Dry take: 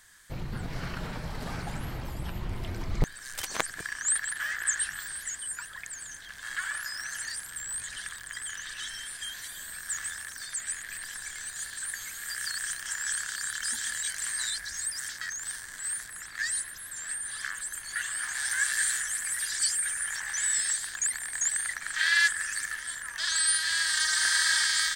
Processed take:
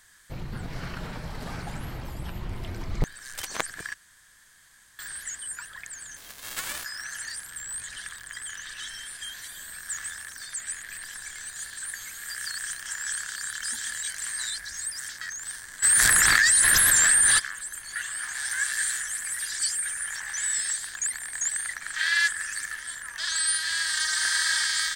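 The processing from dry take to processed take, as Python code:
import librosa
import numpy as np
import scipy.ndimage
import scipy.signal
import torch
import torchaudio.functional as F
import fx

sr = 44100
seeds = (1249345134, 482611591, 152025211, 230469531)

y = fx.envelope_flatten(x, sr, power=0.3, at=(6.16, 6.83), fade=0.02)
y = fx.env_flatten(y, sr, amount_pct=100, at=(15.82, 17.38), fade=0.02)
y = fx.edit(y, sr, fx.room_tone_fill(start_s=3.94, length_s=1.05), tone=tone)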